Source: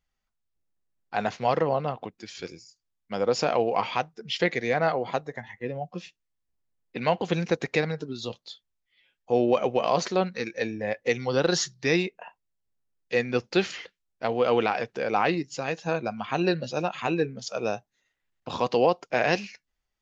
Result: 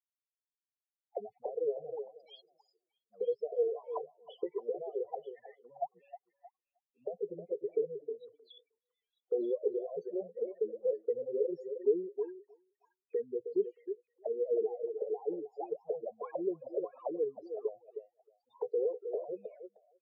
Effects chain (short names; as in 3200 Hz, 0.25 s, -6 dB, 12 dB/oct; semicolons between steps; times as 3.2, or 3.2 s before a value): loudest bins only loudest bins 4; auto-wah 420–4800 Hz, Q 18, down, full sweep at -28 dBFS; vibrato 5.6 Hz 39 cents; on a send: delay with a stepping band-pass 0.312 s, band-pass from 460 Hz, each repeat 1.4 oct, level -8 dB; on the sum: gain +6.5 dB